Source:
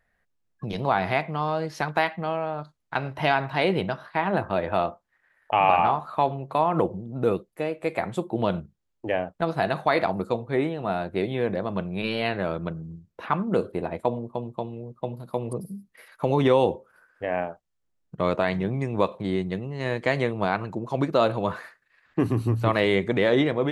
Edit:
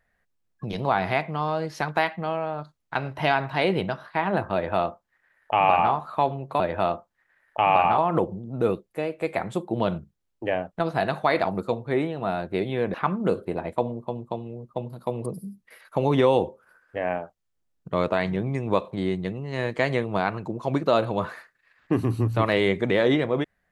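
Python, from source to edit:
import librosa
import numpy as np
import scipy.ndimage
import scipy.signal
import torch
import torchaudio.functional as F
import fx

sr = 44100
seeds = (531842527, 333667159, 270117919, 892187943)

y = fx.edit(x, sr, fx.duplicate(start_s=4.54, length_s=1.38, to_s=6.6),
    fx.cut(start_s=11.56, length_s=1.65), tone=tone)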